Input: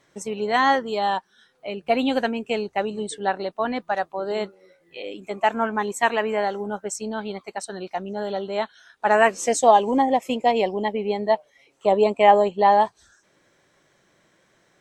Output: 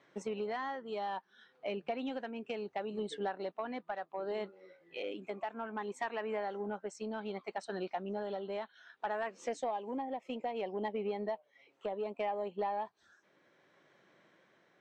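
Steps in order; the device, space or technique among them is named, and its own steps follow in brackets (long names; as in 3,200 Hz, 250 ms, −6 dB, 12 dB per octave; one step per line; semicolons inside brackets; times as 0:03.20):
AM radio (band-pass filter 170–3,400 Hz; downward compressor 8 to 1, threshold −29 dBFS, peak gain reduction 19.5 dB; soft clipping −21.5 dBFS, distortion −22 dB; amplitude tremolo 0.64 Hz, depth 30%)
level −3 dB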